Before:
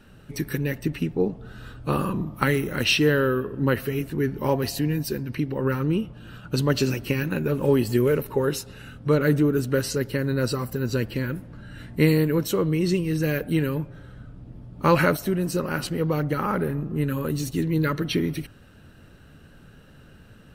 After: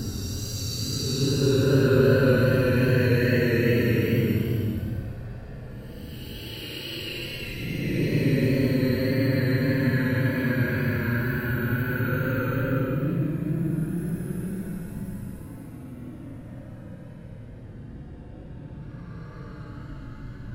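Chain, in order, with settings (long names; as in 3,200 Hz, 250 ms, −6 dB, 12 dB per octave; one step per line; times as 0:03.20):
extreme stretch with random phases 30×, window 0.05 s, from 0:10.89
tape wow and flutter 25 cents
level +2.5 dB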